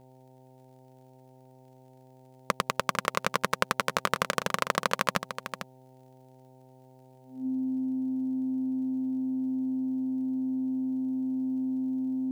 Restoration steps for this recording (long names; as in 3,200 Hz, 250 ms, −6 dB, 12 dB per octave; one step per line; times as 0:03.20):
click removal
hum removal 129.5 Hz, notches 7
notch filter 260 Hz, Q 30
echo removal 450 ms −10 dB